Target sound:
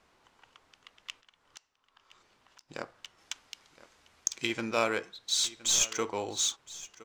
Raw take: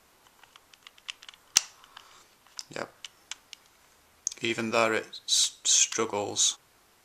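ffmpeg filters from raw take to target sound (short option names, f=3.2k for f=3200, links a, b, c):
-filter_complex "[0:a]asplit=3[a][b][c];[a]afade=t=out:st=1.2:d=0.02[d];[b]acompressor=threshold=-54dB:ratio=3,afade=t=in:st=1.2:d=0.02,afade=t=out:st=2.68:d=0.02[e];[c]afade=t=in:st=2.68:d=0.02[f];[d][e][f]amix=inputs=3:normalize=0,asettb=1/sr,asplit=3[g][h][i];[g]atrim=end=3.184[j];[h]atrim=start=3.18:end=4.47,asetpts=PTS-STARTPTS,afade=t=in:d=0.004:c=qsin,afade=t=out:st=1.286:d=0.004:c=qsin,highshelf=f=2.2k:g=6.5[k];[i]atrim=start=4.466[l];[j][k]acrossfade=d=0.004:c1=hsin:c2=qsin[m];[m][l]acrossfade=d=0.004:c1=qsin:c2=hsin,asettb=1/sr,asplit=3[n][o][p];[n]atrim=end=5.444[q];[o]atrim=start=5.44:end=5.92,asetpts=PTS-STARTPTS,afade=t=in:d=0.004:c=qsin,afade=t=out:st=0.476:d=0.004:c=qsin,aeval=exprs='0.316*(cos(1*acos(clip(val(0)/0.316,-1,1)))-cos(1*PI/2))+0.0355*(cos(4*acos(clip(val(0)/0.316,-1,1)))-cos(4*PI/2))+0.02*(cos(5*acos(clip(val(0)/0.316,-1,1)))-cos(5*PI/2))+0.01*(cos(6*acos(clip(val(0)/0.316,-1,1)))-cos(6*PI/2))':c=same[r];[p]atrim=start=5.916[s];[q][r]acrossfade=d=0.004:c1=hsin:c2=qsin[t];[t][s]acrossfade=d=0.004:c1=qsin:c2=hsin,adynamicsmooth=sensitivity=5:basefreq=5.9k,aecho=1:1:1017:0.119,volume=-3.5dB"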